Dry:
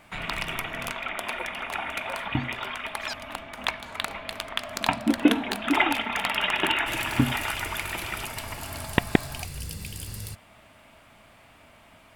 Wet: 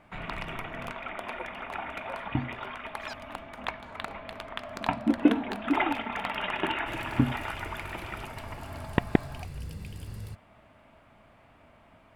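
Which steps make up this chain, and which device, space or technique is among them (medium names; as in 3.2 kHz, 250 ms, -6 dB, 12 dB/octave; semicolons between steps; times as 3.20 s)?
through cloth (treble shelf 2.9 kHz -16.5 dB); 2.95–3.60 s: treble shelf 4.4 kHz +6 dB; trim -1.5 dB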